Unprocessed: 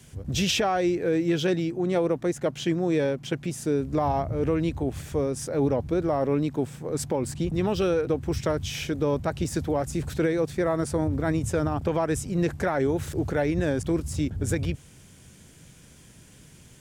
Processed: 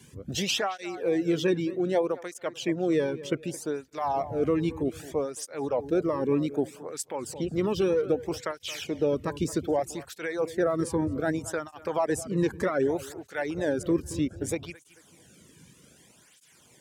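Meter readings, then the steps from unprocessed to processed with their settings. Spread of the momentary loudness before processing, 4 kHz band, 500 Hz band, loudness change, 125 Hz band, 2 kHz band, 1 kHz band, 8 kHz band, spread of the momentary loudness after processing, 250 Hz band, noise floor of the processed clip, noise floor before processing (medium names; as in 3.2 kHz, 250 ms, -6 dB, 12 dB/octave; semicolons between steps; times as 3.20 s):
5 LU, -2.0 dB, -1.5 dB, -2.5 dB, -7.5 dB, -2.0 dB, -2.5 dB, -2.0 dB, 8 LU, -2.5 dB, -59 dBFS, -51 dBFS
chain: reverb removal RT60 0.6 s; on a send: tape echo 221 ms, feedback 39%, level -14.5 dB, low-pass 2.1 kHz; on the sum: cancelling through-zero flanger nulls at 0.64 Hz, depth 1.6 ms; trim +1.5 dB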